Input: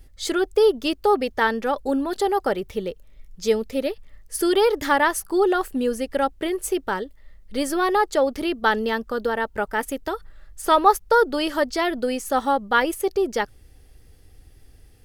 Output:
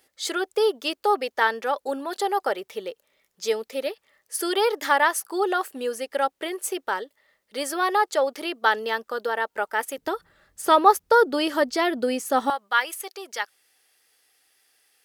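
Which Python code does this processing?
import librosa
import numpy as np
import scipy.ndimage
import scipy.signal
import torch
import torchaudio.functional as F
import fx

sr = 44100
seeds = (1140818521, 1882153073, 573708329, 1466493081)

y = fx.highpass(x, sr, hz=fx.steps((0.0, 510.0), (9.98, 150.0), (12.5, 1100.0)), slope=12)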